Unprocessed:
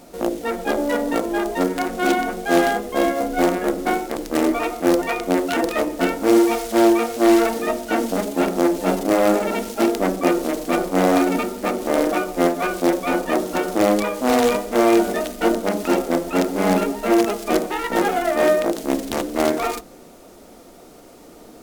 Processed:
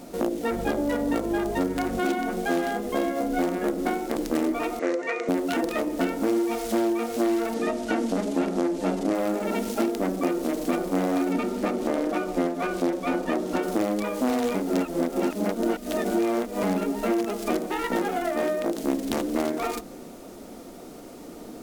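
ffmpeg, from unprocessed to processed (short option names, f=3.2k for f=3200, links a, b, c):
-filter_complex "[0:a]asettb=1/sr,asplit=3[a][b][c];[a]atrim=end=0.514[d];[b]atrim=start=0.51:end=1.99,asetpts=PTS-STARTPTS,afade=t=in:d=0.004:c=qsin,afade=t=out:st=1.476:d=0.004:c=qsin,aeval=exprs='val(0)+0.02*(sin(2*PI*50*n/s)+sin(2*PI*2*50*n/s)/2+sin(2*PI*3*50*n/s)/3+sin(2*PI*4*50*n/s)/4+sin(2*PI*5*50*n/s)/5)':c=same[e];[c]atrim=start=1.986[f];[d][e]acrossfade=d=0.004:c1=hsin:c2=qsin[g];[g][f]acrossfade=d=0.004:c1=qsin:c2=hsin,asettb=1/sr,asplit=3[h][i][j];[h]atrim=end=4.794[k];[i]atrim=start=4.79:end=5.29,asetpts=PTS-STARTPTS,afade=t=in:d=0.004:c=qsin,afade=t=out:st=0.496:d=0.004:c=qsin,highpass=440,equalizer=f=480:t=q:w=4:g=7,equalizer=f=810:t=q:w=4:g=-10,equalizer=f=2k:t=q:w=4:g=7,equalizer=f=3.3k:t=q:w=4:g=-7,equalizer=f=4.9k:t=q:w=4:g=-6,lowpass=f=6.8k:w=0.5412,lowpass=f=6.8k:w=1.3066[l];[j]atrim=start=5.286[m];[k][l]acrossfade=d=0.004:c1=hsin:c2=qsin[n];[n][m]acrossfade=d=0.004:c1=qsin:c2=hsin,asettb=1/sr,asplit=3[o][p][q];[o]atrim=end=7.544[r];[p]atrim=start=7.54:end=9.15,asetpts=PTS-STARTPTS,afade=t=in:d=0.004:c=qsin,afade=t=out:st=1.606:d=0.004:c=qsin,lowpass=8.7k[s];[q]atrim=start=9.146[t];[r][s]acrossfade=d=0.004:c1=hsin:c2=qsin[u];[u][t]acrossfade=d=0.004:c1=qsin:c2=hsin,asettb=1/sr,asplit=3[v][w][x];[v]atrim=end=11.324[y];[w]atrim=start=11.32:end=13.63,asetpts=PTS-STARTPTS,afade=t=in:d=0.004:c=qsin,afade=t=out:st=2.306:d=0.004:c=qsin,highshelf=f=10k:g=-10.5[z];[x]atrim=start=13.626[aa];[y][z]acrossfade=d=0.004:c1=hsin:c2=qsin[ab];[ab][aa]acrossfade=d=0.004:c1=qsin:c2=hsin,asplit=3[ac][ad][ae];[ac]atrim=end=14.552[af];[ad]atrim=start=14.548:end=16.632,asetpts=PTS-STARTPTS,areverse[ag];[ae]atrim=start=16.628[ah];[af][ag]acrossfade=d=0.004:c1=hsin:c2=hsin[ai];[ai][ah]acrossfade=d=0.004:c1=hsin:c2=hsin,acompressor=threshold=-25dB:ratio=6,equalizer=f=240:t=o:w=1.3:g=5.5"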